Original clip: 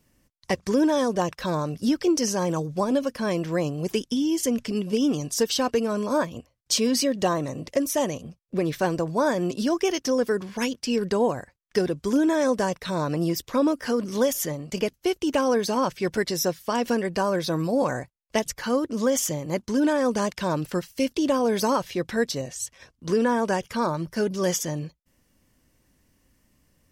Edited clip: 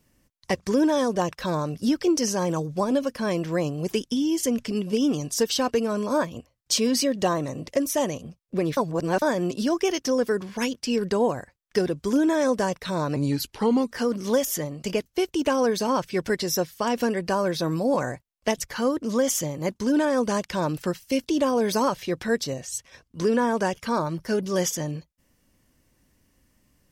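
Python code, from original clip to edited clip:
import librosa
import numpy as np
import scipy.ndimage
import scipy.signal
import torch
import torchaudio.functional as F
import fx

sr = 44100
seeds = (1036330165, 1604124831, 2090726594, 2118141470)

y = fx.edit(x, sr, fx.reverse_span(start_s=8.77, length_s=0.45),
    fx.speed_span(start_s=13.16, length_s=0.64, speed=0.84), tone=tone)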